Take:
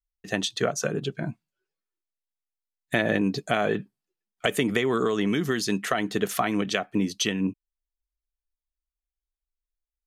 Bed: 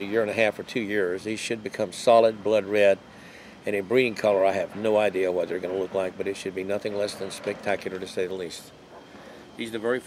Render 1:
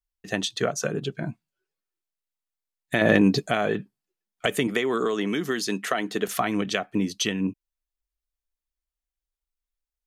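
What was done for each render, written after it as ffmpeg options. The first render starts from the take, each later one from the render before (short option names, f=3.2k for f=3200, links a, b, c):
-filter_complex "[0:a]asettb=1/sr,asplit=3[a][b][c];[a]atrim=end=3.014[d];[b]atrim=start=3.01:end=3.47,asetpts=PTS-STARTPTS,afade=t=in:d=0.004:c=qsin,afade=t=out:st=0.456:d=0.004:c=qsin,acontrast=65[e];[c]atrim=start=3.466[f];[d][e]acrossfade=d=0.004:c1=hsin:c2=qsin[g];[g][f]acrossfade=d=0.004:c1=qsin:c2=hsin,asettb=1/sr,asplit=3[h][i][j];[h]atrim=end=4.674[k];[i]atrim=start=4.67:end=6.28,asetpts=PTS-STARTPTS,afade=t=in:d=0.004:c=qsin,afade=t=out:st=1.606:d=0.004:c=qsin,highpass=210[l];[j]atrim=start=6.276[m];[k][l]acrossfade=d=0.004:c1=hsin:c2=qsin[n];[n][m]acrossfade=d=0.004:c1=qsin:c2=hsin"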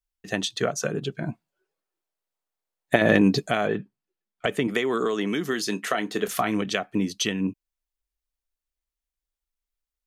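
-filter_complex "[0:a]asettb=1/sr,asplit=3[a][b][c];[a]atrim=end=1.284[d];[b]atrim=start=1.28:end=2.96,asetpts=PTS-STARTPTS,afade=t=in:d=0.004:c=qsin,afade=t=out:st=1.676:d=0.004:c=qsin,equalizer=f=620:w=0.57:g=10.5[e];[c]atrim=start=2.956[f];[d][e]acrossfade=d=0.004:c1=hsin:c2=qsin[g];[g][f]acrossfade=d=0.004:c1=qsin:c2=hsin,asettb=1/sr,asplit=3[h][i][j];[h]atrim=end=3.674[k];[i]atrim=start=3.67:end=4.68,asetpts=PTS-STARTPTS,afade=t=in:d=0.004:c=qsin,afade=t=out:st=1.006:d=0.004:c=qsin,lowpass=f=2.6k:p=1[l];[j]atrim=start=4.676[m];[k][l]acrossfade=d=0.004:c1=hsin:c2=qsin[n];[n][m]acrossfade=d=0.004:c1=qsin:c2=hsin,asettb=1/sr,asplit=3[o][p][q];[o]atrim=end=5.504[r];[p]atrim=start=5.5:end=6.62,asetpts=PTS-STARTPTS,afade=t=in:d=0.004:c=qsin,afade=t=out:st=1.116:d=0.004:c=qsin,asplit=2[s][t];[t]adelay=28,volume=-12.5dB[u];[s][u]amix=inputs=2:normalize=0,atrim=end_sample=49392[v];[q]atrim=start=6.616[w];[r][v]acrossfade=d=0.004:c1=hsin:c2=qsin[x];[x][w]acrossfade=d=0.004:c1=qsin:c2=hsin"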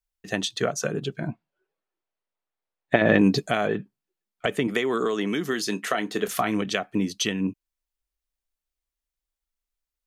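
-filter_complex "[0:a]asettb=1/sr,asplit=3[a][b][c];[a]atrim=end=1.274[d];[b]atrim=start=1.27:end=3.19,asetpts=PTS-STARTPTS,afade=t=in:d=0.004:c=qsin,afade=t=out:st=1.916:d=0.004:c=qsin,lowpass=3.5k[e];[c]atrim=start=3.186[f];[d][e]acrossfade=d=0.004:c1=hsin:c2=qsin[g];[g][f]acrossfade=d=0.004:c1=qsin:c2=hsin"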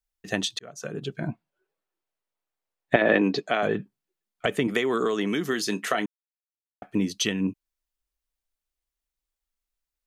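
-filter_complex "[0:a]asettb=1/sr,asplit=3[a][b][c];[a]atrim=end=2.964[d];[b]atrim=start=2.96:end=3.63,asetpts=PTS-STARTPTS,afade=t=in:d=0.004:c=qsin,afade=t=out:st=0.666:d=0.004:c=qsin,acrossover=split=240 5400:gain=0.126 1 0.0794[e][f][g];[e][f][g]amix=inputs=3:normalize=0[h];[c]atrim=start=3.626[i];[d][h]acrossfade=d=0.004:c1=hsin:c2=qsin[j];[j][i]acrossfade=d=0.004:c1=qsin:c2=hsin,asplit=4[k][l][m][n];[k]atrim=end=0.59,asetpts=PTS-STARTPTS,afade=t=out:st=0.586:d=0.004:c=hsin[o];[l]atrim=start=0.59:end=6.06,asetpts=PTS-STARTPTS,afade=t=in:d=0.66,afade=t=out:st=5.466:d=0.004:c=hsin[p];[m]atrim=start=6.06:end=6.82,asetpts=PTS-STARTPTS,volume=0[q];[n]atrim=start=6.82,asetpts=PTS-STARTPTS,afade=t=in:d=0.004:c=hsin[r];[o][p][q][r]concat=n=4:v=0:a=1"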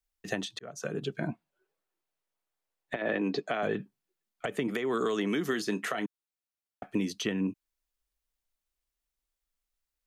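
-filter_complex "[0:a]acrossover=split=170|2000[a][b][c];[a]acompressor=threshold=-45dB:ratio=4[d];[b]acompressor=threshold=-27dB:ratio=4[e];[c]acompressor=threshold=-40dB:ratio=4[f];[d][e][f]amix=inputs=3:normalize=0,alimiter=limit=-17.5dB:level=0:latency=1:release=152"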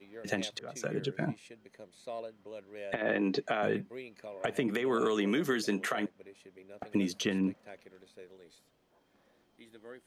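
-filter_complex "[1:a]volume=-23.5dB[a];[0:a][a]amix=inputs=2:normalize=0"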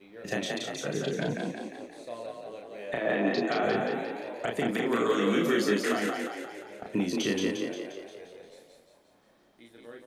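-filter_complex "[0:a]asplit=2[a][b];[b]adelay=34,volume=-2.5dB[c];[a][c]amix=inputs=2:normalize=0,asplit=9[d][e][f][g][h][i][j][k][l];[e]adelay=176,afreqshift=34,volume=-3dB[m];[f]adelay=352,afreqshift=68,volume=-8.2dB[n];[g]adelay=528,afreqshift=102,volume=-13.4dB[o];[h]adelay=704,afreqshift=136,volume=-18.6dB[p];[i]adelay=880,afreqshift=170,volume=-23.8dB[q];[j]adelay=1056,afreqshift=204,volume=-29dB[r];[k]adelay=1232,afreqshift=238,volume=-34.2dB[s];[l]adelay=1408,afreqshift=272,volume=-39.3dB[t];[d][m][n][o][p][q][r][s][t]amix=inputs=9:normalize=0"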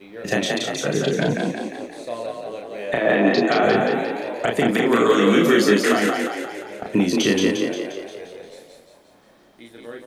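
-af "volume=10dB"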